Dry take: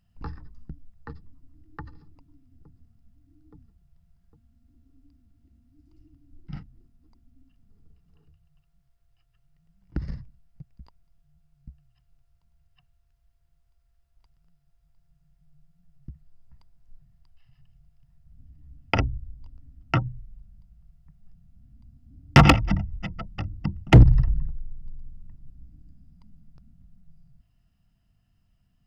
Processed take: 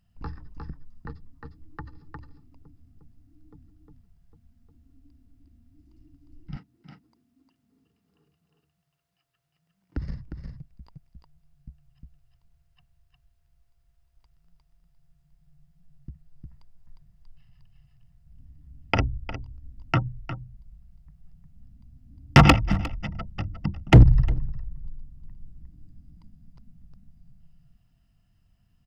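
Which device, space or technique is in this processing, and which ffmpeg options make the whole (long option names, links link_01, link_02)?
ducked delay: -filter_complex "[0:a]asplit=3[link_01][link_02][link_03];[link_02]adelay=356,volume=-3dB[link_04];[link_03]apad=whole_len=1288697[link_05];[link_04][link_05]sidechaincompress=threshold=-38dB:ratio=4:attack=16:release=498[link_06];[link_01][link_06]amix=inputs=2:normalize=0,asettb=1/sr,asplit=3[link_07][link_08][link_09];[link_07]atrim=end=6.574[link_10];[link_08]atrim=start=6.57:end=9.97,asetpts=PTS-STARTPTS,afade=type=in:duration=0.004:curve=qsin,afade=type=out:start_time=3.396:duration=0.004:curve=qsin,highpass=230[link_11];[link_09]atrim=start=9.966[link_12];[link_10][link_11]acrossfade=duration=0.004:curve1=hsin:curve2=qsin[link_13];[link_13][link_12]acrossfade=duration=0.004:curve1=qsin:curve2=hsin"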